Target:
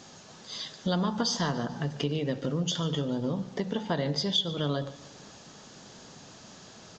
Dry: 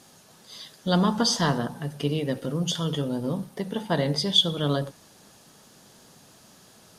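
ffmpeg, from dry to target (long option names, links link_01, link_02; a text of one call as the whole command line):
ffmpeg -i in.wav -filter_complex "[0:a]acompressor=threshold=-33dB:ratio=3,asplit=2[link_01][link_02];[link_02]aecho=0:1:146|292|438|584:0.119|0.0618|0.0321|0.0167[link_03];[link_01][link_03]amix=inputs=2:normalize=0,aresample=16000,aresample=44100,volume=4.5dB" out.wav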